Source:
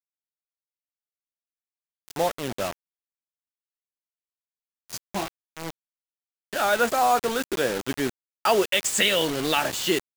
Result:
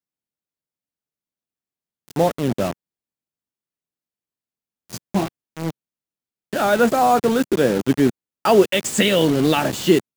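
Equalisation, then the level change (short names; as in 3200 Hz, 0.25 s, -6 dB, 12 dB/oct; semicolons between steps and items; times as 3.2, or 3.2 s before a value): bell 180 Hz +14 dB 3 oct; 0.0 dB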